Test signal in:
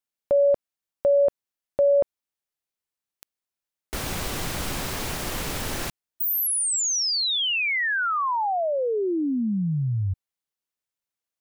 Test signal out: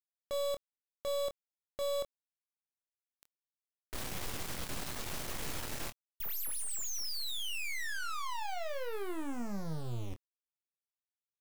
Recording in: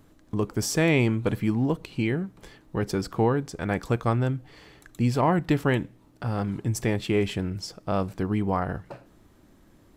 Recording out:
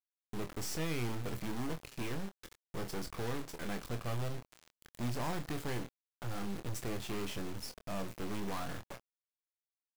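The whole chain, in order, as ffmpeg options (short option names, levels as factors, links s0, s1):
-filter_complex "[0:a]acrusher=bits=4:dc=4:mix=0:aa=0.000001,volume=28.2,asoftclip=hard,volume=0.0355,asplit=2[s0][s1];[s1]adelay=25,volume=0.376[s2];[s0][s2]amix=inputs=2:normalize=0,volume=0.596"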